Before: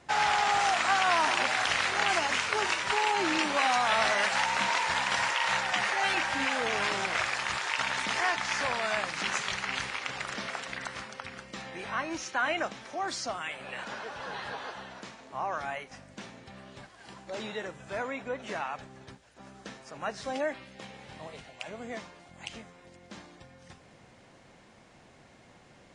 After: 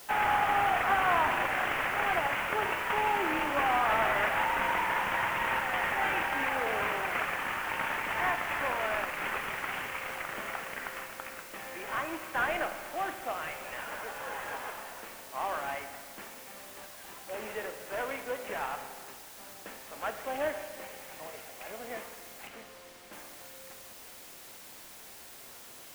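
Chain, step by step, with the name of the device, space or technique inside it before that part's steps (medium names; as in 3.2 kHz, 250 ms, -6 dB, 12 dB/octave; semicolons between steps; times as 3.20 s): army field radio (band-pass 340–2800 Hz; CVSD coder 16 kbps; white noise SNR 16 dB); 22.47–23.13 s: treble shelf 6.5 kHz -9 dB; spring tank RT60 1.7 s, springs 32/49 ms, chirp 45 ms, DRR 8 dB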